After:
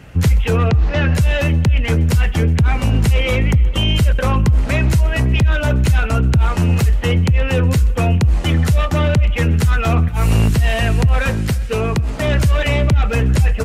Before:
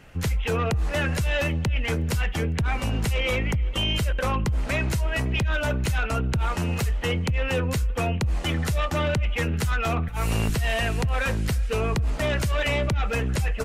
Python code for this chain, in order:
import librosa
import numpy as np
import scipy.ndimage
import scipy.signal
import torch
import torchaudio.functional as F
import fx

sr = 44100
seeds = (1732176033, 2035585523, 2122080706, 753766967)

y = scipy.signal.sosfilt(scipy.signal.butter(2, 54.0, 'highpass', fs=sr, output='sos'), x)
y = fx.low_shelf(y, sr, hz=230.0, db=9.0)
y = fx.rider(y, sr, range_db=10, speed_s=0.5)
y = fx.low_shelf(y, sr, hz=82.0, db=-10.5, at=(11.3, 12.28))
y = fx.quant_float(y, sr, bits=8)
y = fx.lowpass(y, sr, hz=5300.0, slope=24, at=(0.68, 1.15))
y = fx.echo_feedback(y, sr, ms=127, feedback_pct=48, wet_db=-22)
y = y * librosa.db_to_amplitude(5.0)